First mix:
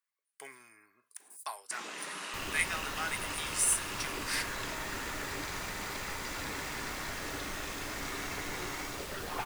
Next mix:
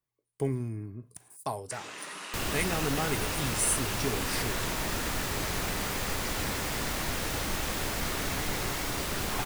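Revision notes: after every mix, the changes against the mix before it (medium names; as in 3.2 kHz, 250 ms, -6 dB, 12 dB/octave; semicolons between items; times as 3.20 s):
speech: remove resonant high-pass 1.5 kHz, resonance Q 1.5; second sound +10.5 dB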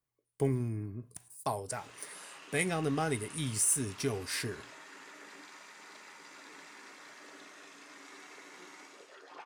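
first sound -11.5 dB; second sound: muted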